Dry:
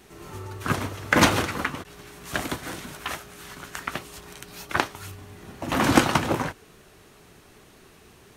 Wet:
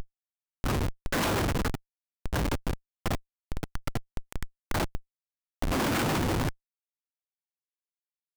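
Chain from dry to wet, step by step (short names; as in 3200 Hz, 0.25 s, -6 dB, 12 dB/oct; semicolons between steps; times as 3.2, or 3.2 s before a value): upward compressor, threshold -30 dBFS; Schmitt trigger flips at -25.5 dBFS; gain +1.5 dB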